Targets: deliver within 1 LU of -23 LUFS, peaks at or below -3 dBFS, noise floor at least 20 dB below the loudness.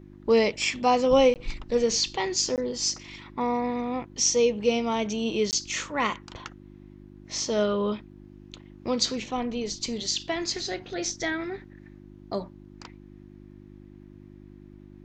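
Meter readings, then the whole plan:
dropouts 3; longest dropout 18 ms; hum 50 Hz; harmonics up to 350 Hz; hum level -46 dBFS; loudness -26.5 LUFS; peak -9.5 dBFS; loudness target -23.0 LUFS
-> interpolate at 1.34/2.56/5.51, 18 ms; de-hum 50 Hz, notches 7; gain +3.5 dB

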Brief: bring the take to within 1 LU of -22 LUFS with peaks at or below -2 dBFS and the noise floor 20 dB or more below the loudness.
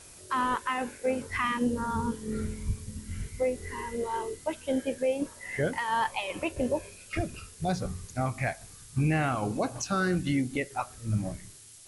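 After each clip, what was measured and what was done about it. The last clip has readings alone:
noise floor -50 dBFS; noise floor target -51 dBFS; loudness -31.0 LUFS; peak -18.0 dBFS; loudness target -22.0 LUFS
-> noise print and reduce 6 dB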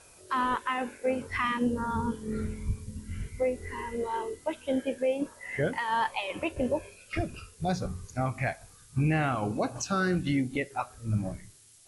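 noise floor -55 dBFS; loudness -31.5 LUFS; peak -18.0 dBFS; loudness target -22.0 LUFS
-> gain +9.5 dB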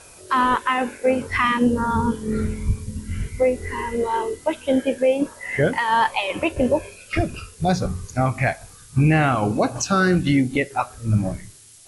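loudness -22.0 LUFS; peak -8.5 dBFS; noise floor -46 dBFS

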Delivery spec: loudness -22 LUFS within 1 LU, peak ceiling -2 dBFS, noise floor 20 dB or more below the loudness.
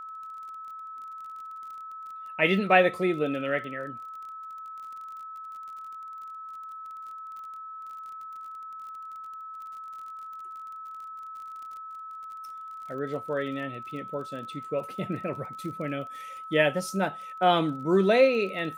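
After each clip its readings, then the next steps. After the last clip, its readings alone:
ticks 34/s; steady tone 1300 Hz; tone level -38 dBFS; loudness -30.5 LUFS; peak -7.5 dBFS; loudness target -22.0 LUFS
-> de-click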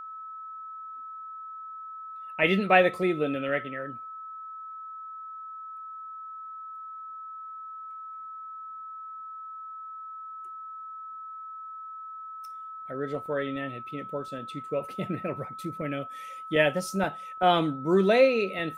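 ticks 0/s; steady tone 1300 Hz; tone level -38 dBFS
-> notch 1300 Hz, Q 30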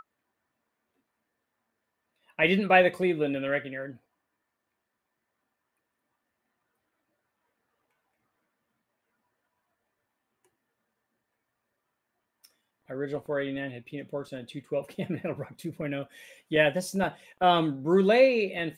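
steady tone none; loudness -27.0 LUFS; peak -8.0 dBFS; loudness target -22.0 LUFS
-> gain +5 dB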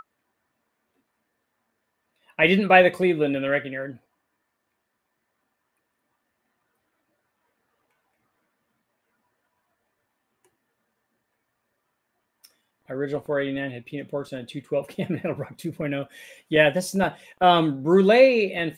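loudness -22.0 LUFS; peak -3.0 dBFS; noise floor -77 dBFS

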